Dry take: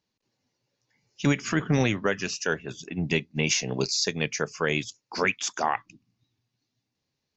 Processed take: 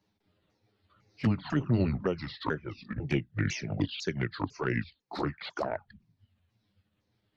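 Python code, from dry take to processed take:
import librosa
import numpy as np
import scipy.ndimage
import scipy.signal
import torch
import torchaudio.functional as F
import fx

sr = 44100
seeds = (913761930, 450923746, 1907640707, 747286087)

y = fx.pitch_ramps(x, sr, semitones=-8.5, every_ms=500)
y = fx.env_flanger(y, sr, rest_ms=9.8, full_db=-21.0)
y = fx.high_shelf(y, sr, hz=2100.0, db=-10.5)
y = fx.band_squash(y, sr, depth_pct=40)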